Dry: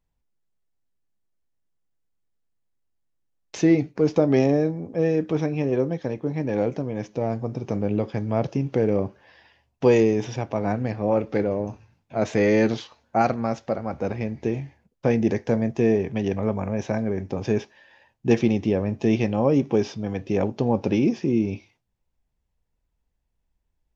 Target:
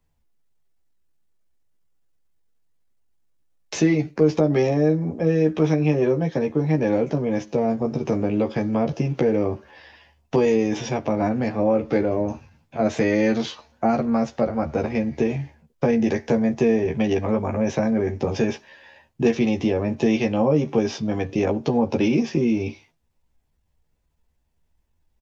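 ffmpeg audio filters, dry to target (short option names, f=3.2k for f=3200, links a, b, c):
-filter_complex "[0:a]acrossover=split=130|530[a][b][c];[a]acompressor=threshold=-38dB:ratio=4[d];[b]acompressor=threshold=-27dB:ratio=4[e];[c]acompressor=threshold=-32dB:ratio=4[f];[d][e][f]amix=inputs=3:normalize=0,asplit=2[g][h];[h]adelay=13,volume=-3.5dB[i];[g][i]amix=inputs=2:normalize=0,atempo=0.95,volume=5dB"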